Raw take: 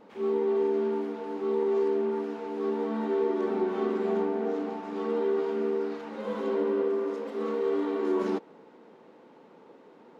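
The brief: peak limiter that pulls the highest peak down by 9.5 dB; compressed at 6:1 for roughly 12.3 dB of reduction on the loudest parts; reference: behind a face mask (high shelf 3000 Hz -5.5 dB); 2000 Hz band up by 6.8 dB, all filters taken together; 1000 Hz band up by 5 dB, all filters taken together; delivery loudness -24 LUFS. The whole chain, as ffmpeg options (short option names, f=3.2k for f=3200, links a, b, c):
-af "equalizer=f=1k:t=o:g=4.5,equalizer=f=2k:t=o:g=9,acompressor=threshold=-36dB:ratio=6,alimiter=level_in=12.5dB:limit=-24dB:level=0:latency=1,volume=-12.5dB,highshelf=f=3k:g=-5.5,volume=21dB"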